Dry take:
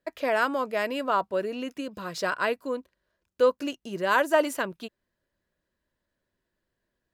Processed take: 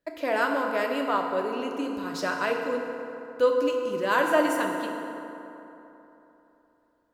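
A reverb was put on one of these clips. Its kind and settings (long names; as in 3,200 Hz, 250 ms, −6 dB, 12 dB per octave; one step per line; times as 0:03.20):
feedback delay network reverb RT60 3.3 s, high-frequency decay 0.5×, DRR 1 dB
level −2 dB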